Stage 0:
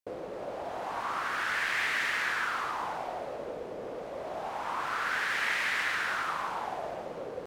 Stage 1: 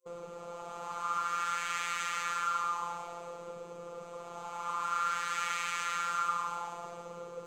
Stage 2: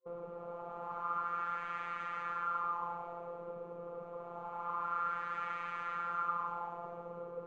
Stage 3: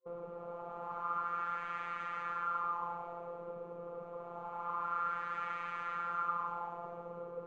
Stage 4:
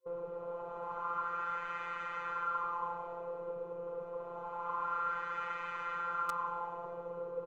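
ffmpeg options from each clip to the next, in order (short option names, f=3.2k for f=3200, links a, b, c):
-af "afftfilt=real='hypot(re,im)*cos(PI*b)':imag='0':win_size=1024:overlap=0.75,superequalizer=6b=0.398:8b=0.398:10b=2.24:11b=0.447:15b=3.16,volume=-1dB"
-af "lowpass=1.2k"
-af anull
-filter_complex "[0:a]asplit=2[a][b];[b]acrusher=bits=3:mix=0:aa=0.000001,volume=-9dB[c];[a][c]amix=inputs=2:normalize=0,aecho=1:1:2:0.65"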